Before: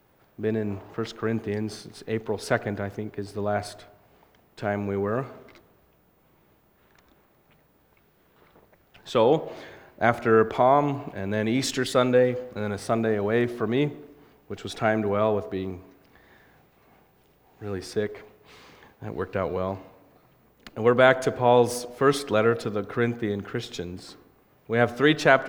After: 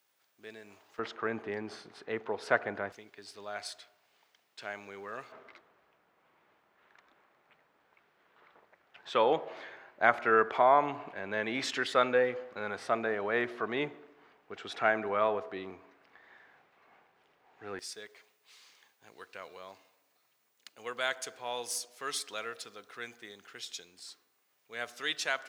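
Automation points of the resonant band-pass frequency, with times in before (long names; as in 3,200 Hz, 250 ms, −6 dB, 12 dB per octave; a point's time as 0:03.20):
resonant band-pass, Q 0.73
7,100 Hz
from 0:00.99 1,300 Hz
from 0:02.92 4,700 Hz
from 0:05.32 1,600 Hz
from 0:17.79 7,600 Hz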